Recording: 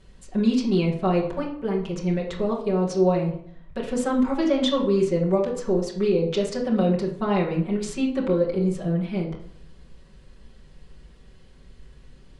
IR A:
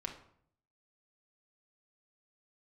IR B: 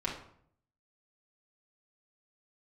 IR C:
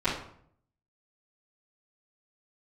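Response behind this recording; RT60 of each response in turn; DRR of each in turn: B; 0.60 s, 0.60 s, 0.60 s; 0.0 dB, -6.5 dB, -16.0 dB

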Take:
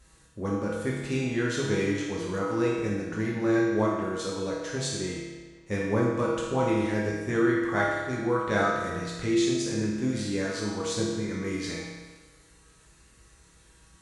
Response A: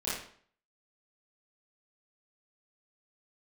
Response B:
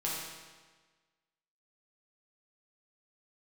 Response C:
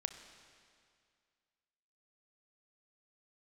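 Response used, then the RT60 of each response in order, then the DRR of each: B; 0.55 s, 1.4 s, 2.2 s; -11.0 dB, -6.0 dB, 7.5 dB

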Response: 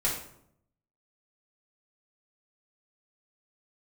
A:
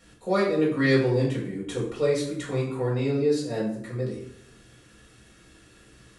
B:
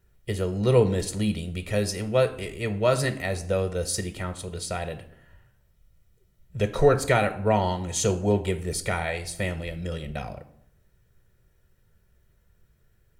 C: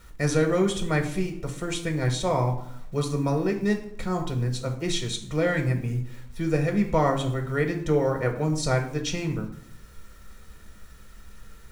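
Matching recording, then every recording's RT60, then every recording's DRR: A; 0.70 s, 0.70 s, 0.70 s; -6.0 dB, 9.0 dB, 3.5 dB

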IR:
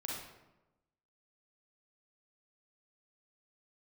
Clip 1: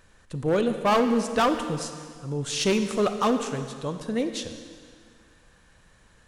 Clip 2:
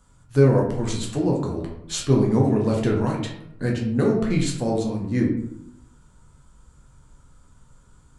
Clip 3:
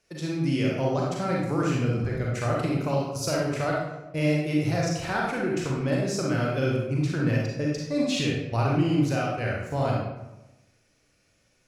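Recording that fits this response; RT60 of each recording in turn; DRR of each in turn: 3; 2.0 s, 0.75 s, 1.0 s; 8.0 dB, -2.0 dB, -3.5 dB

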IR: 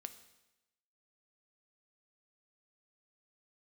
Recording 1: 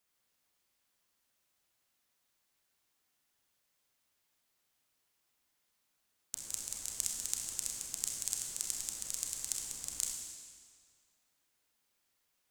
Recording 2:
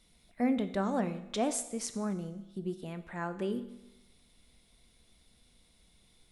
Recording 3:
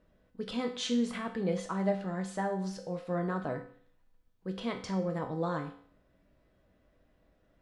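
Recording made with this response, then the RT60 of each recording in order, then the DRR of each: 2; 1.9 s, 0.95 s, 0.55 s; -0.5 dB, 9.0 dB, 3.0 dB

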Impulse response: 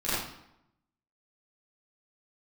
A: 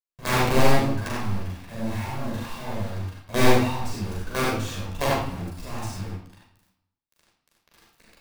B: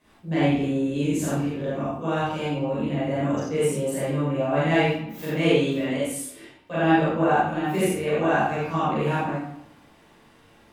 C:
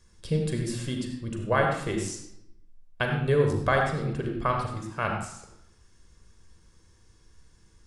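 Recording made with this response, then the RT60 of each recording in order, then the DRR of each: B; 0.80 s, 0.80 s, 0.80 s; -8.0 dB, -14.0 dB, 1.5 dB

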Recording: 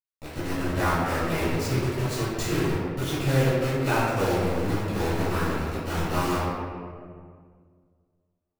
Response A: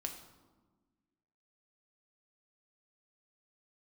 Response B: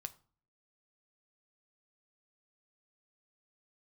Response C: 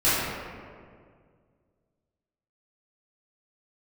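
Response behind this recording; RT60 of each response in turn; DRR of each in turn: C; 1.4 s, 0.45 s, 2.0 s; 3.0 dB, 9.0 dB, -14.5 dB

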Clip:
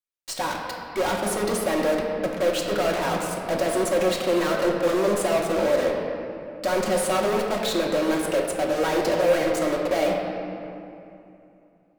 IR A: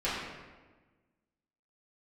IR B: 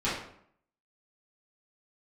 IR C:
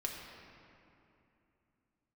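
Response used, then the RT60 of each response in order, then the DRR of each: C; 1.3 s, 0.65 s, 2.8 s; -11.5 dB, -11.5 dB, -1.5 dB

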